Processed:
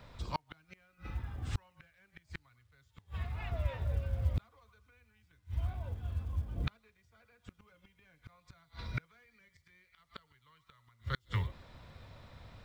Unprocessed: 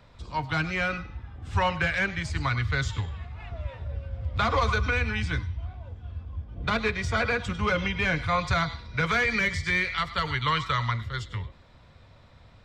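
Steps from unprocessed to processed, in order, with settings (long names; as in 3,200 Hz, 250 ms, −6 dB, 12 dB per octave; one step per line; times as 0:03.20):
gate with flip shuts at −21 dBFS, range −40 dB
log-companded quantiser 8 bits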